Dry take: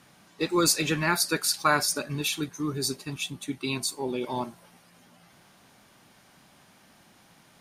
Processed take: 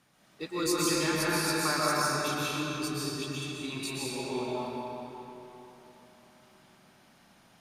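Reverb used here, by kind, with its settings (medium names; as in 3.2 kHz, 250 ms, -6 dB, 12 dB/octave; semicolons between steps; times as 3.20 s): algorithmic reverb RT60 3.6 s, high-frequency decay 0.7×, pre-delay 95 ms, DRR -7.5 dB; trim -10.5 dB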